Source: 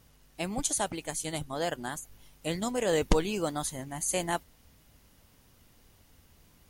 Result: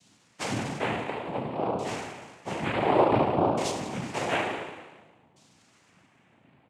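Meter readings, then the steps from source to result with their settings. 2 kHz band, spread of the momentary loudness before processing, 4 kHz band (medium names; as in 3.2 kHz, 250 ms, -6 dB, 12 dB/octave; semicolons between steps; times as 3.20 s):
+5.0 dB, 10 LU, 0.0 dB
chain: peaking EQ 4.9 kHz +9 dB 0.23 oct; on a send: reverse bouncing-ball echo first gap 20 ms, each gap 1.5×, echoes 5; on the sum: LFO low-pass saw down 0.56 Hz 330–5000 Hz; spring tank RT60 1.3 s, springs 35 ms, chirp 60 ms, DRR -1 dB; noise-vocoded speech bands 4; trim -3 dB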